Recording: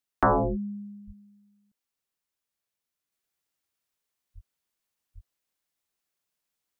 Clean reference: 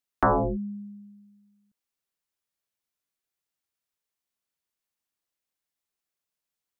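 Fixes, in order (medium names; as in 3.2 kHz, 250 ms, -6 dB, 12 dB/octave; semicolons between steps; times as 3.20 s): de-plosive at 0.50/1.06/4.34/5.14 s; trim 0 dB, from 3.12 s -3.5 dB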